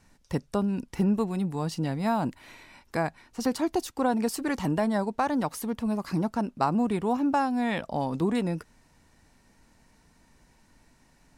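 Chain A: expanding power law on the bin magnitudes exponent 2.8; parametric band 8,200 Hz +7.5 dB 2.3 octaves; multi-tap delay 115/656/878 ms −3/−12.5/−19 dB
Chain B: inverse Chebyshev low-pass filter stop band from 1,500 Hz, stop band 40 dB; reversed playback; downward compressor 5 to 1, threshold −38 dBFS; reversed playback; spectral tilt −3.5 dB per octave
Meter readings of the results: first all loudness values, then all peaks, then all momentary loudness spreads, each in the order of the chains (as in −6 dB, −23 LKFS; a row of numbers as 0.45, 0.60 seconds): −27.0, −34.0 LKFS; −13.5, −20.0 dBFS; 10, 21 LU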